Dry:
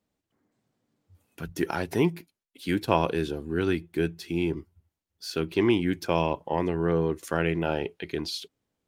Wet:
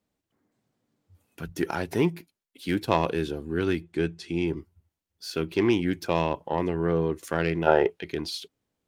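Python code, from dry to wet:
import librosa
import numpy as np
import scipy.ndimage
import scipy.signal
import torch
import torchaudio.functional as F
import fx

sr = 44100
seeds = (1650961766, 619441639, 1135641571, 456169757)

y = fx.self_delay(x, sr, depth_ms=0.1)
y = fx.lowpass(y, sr, hz=9300.0, slope=24, at=(3.84, 4.46), fade=0.02)
y = fx.spec_box(y, sr, start_s=7.67, length_s=0.23, low_hz=340.0, high_hz=2100.0, gain_db=10)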